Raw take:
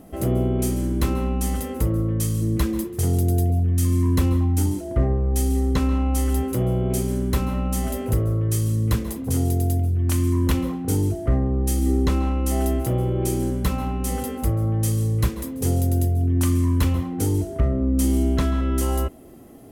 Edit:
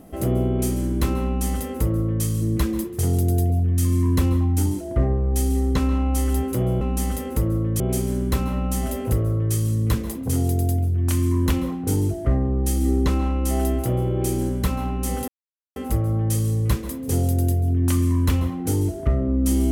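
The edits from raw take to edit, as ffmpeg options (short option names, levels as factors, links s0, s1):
-filter_complex "[0:a]asplit=4[s0][s1][s2][s3];[s0]atrim=end=6.812[s4];[s1]atrim=start=1.248:end=2.242[s5];[s2]atrim=start=6.808:end=14.29,asetpts=PTS-STARTPTS,afade=t=out:st=7.478:d=0.004:c=hsin,apad=pad_dur=0.48[s6];[s3]atrim=start=14.29,asetpts=PTS-STARTPTS,afade=t=in:d=0.004:c=hsin[s7];[s4][s5]acrossfade=d=0.004:c1=hsin:c2=hsin[s8];[s6][s7]concat=n=2:v=0:a=1[s9];[s8][s9]acrossfade=d=0.004:c1=hsin:c2=hsin"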